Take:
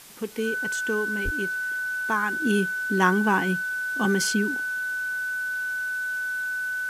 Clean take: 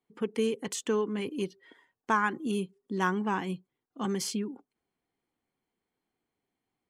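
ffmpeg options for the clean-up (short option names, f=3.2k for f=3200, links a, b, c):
-filter_complex "[0:a]bandreject=f=1.5k:w=30,asplit=3[a][b][c];[a]afade=t=out:st=1.24:d=0.02[d];[b]highpass=f=140:w=0.5412,highpass=f=140:w=1.3066,afade=t=in:st=1.24:d=0.02,afade=t=out:st=1.36:d=0.02[e];[c]afade=t=in:st=1.36:d=0.02[f];[d][e][f]amix=inputs=3:normalize=0,afwtdn=0.005,asetnsamples=n=441:p=0,asendcmd='2.42 volume volume -7.5dB',volume=0dB"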